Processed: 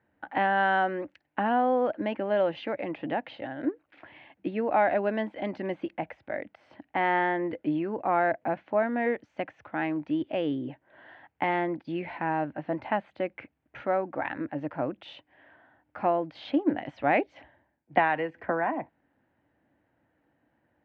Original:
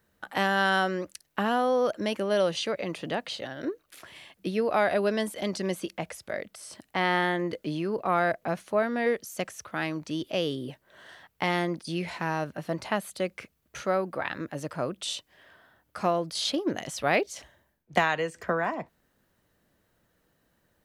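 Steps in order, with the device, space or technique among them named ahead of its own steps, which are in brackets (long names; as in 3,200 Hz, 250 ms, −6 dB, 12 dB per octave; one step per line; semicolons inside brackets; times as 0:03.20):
bass cabinet (loudspeaker in its box 84–2,400 Hz, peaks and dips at 180 Hz −7 dB, 290 Hz +8 dB, 420 Hz −6 dB, 820 Hz +6 dB, 1,200 Hz −7 dB)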